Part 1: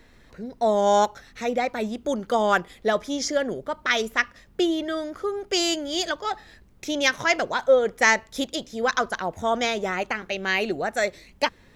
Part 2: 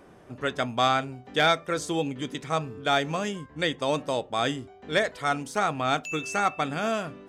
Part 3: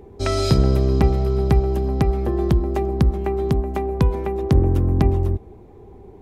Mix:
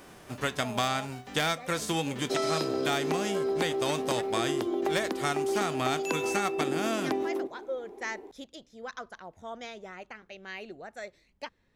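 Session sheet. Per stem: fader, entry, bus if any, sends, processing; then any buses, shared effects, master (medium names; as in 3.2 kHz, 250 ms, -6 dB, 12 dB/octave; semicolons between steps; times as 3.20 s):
-17.0 dB, 0.00 s, no send, treble shelf 11 kHz -9 dB
+1.5 dB, 0.00 s, no send, formants flattened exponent 0.6
-1.0 dB, 2.10 s, no send, steep high-pass 260 Hz 48 dB/octave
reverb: none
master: compression 4:1, threshold -26 dBFS, peak gain reduction 9.5 dB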